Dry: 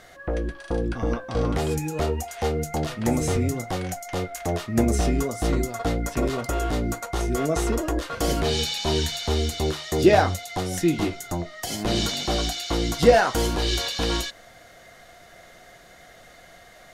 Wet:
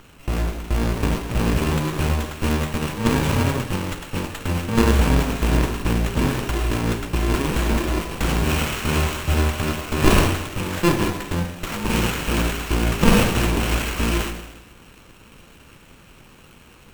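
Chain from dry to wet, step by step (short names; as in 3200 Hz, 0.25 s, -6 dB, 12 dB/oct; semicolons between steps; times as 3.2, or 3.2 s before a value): FFT order left unsorted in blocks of 64 samples; Schroeder reverb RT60 1.1 s, combs from 31 ms, DRR 6 dB; running maximum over 9 samples; gain +5 dB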